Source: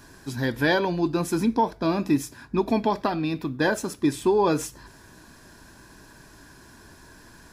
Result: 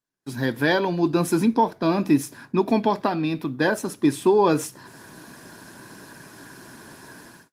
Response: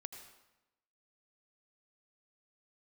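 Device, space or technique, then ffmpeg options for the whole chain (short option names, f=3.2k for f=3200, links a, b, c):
video call: -af "highpass=f=120:w=0.5412,highpass=f=120:w=1.3066,dynaudnorm=f=120:g=5:m=14dB,agate=range=-34dB:threshold=-42dB:ratio=16:detection=peak,volume=-6dB" -ar 48000 -c:a libopus -b:a 32k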